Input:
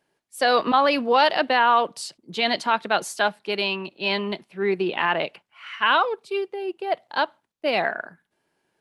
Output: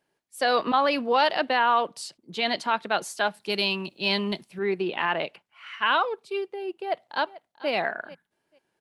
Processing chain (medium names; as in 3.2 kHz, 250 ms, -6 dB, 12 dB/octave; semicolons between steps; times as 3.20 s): 3.34–4.59 s: tone controls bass +7 dB, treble +12 dB; 6.82–7.70 s: echo throw 440 ms, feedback 15%, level -18 dB; trim -3.5 dB